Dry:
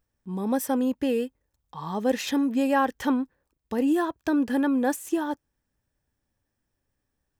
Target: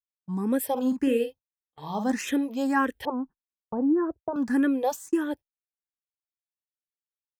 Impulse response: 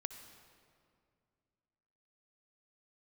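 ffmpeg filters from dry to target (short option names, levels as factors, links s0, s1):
-filter_complex "[0:a]asettb=1/sr,asplit=3[s0][s1][s2];[s0]atrim=end=3.054[s3];[s1]atrim=start=3.05:end=4.36,asetpts=PTS-STARTPTS,afade=t=in:d=0.004:c=qsin,afade=t=out:st=1.306:d=0.004:c=qsin,lowpass=f=1200:w=0.5412,lowpass=f=1200:w=1.3066[s4];[s2]atrim=start=4.356[s5];[s3][s4]acrossfade=d=0.004:c1=hsin:c2=qsin[s6];[s6][s5]acrossfade=d=0.004:c1=qsin:c2=hsin,agate=range=0.00891:threshold=0.0141:ratio=16:detection=peak,asplit=3[s7][s8][s9];[s7]afade=t=out:st=0.76:d=0.02[s10];[s8]asplit=2[s11][s12];[s12]adelay=47,volume=0.422[s13];[s11][s13]amix=inputs=2:normalize=0,afade=t=in:st=0.76:d=0.02,afade=t=out:st=2.11:d=0.02[s14];[s9]afade=t=in:st=2.11:d=0.02[s15];[s10][s14][s15]amix=inputs=3:normalize=0,asplit=2[s16][s17];[s17]afreqshift=1.7[s18];[s16][s18]amix=inputs=2:normalize=1,volume=1.26"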